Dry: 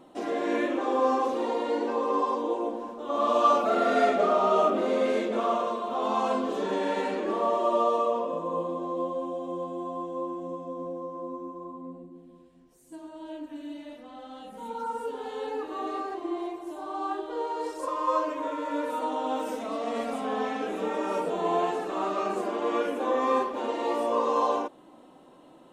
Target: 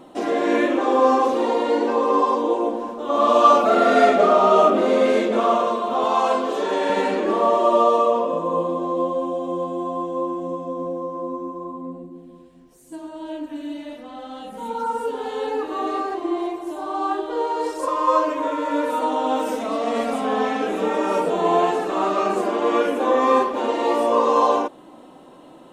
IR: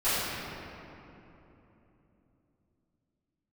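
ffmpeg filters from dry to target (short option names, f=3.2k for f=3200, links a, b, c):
-filter_complex "[0:a]asettb=1/sr,asplit=3[a][b][c];[a]atrim=end=6.044[d];[b]atrim=start=6.04:end=6.9,asetpts=PTS-STARTPTS,afade=t=in:d=0.004:c=qsin,afade=t=out:st=0.856:d=0.004:c=qsin,highpass=360[e];[c]atrim=start=6.896[f];[d][e]acrossfade=d=0.004:c1=hsin:c2=qsin[g];[g][f]acrossfade=d=0.004:c1=qsin:c2=hsin,volume=8dB"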